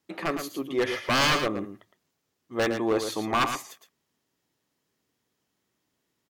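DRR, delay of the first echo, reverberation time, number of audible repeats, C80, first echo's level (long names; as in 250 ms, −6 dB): no reverb audible, 112 ms, no reverb audible, 1, no reverb audible, −8.0 dB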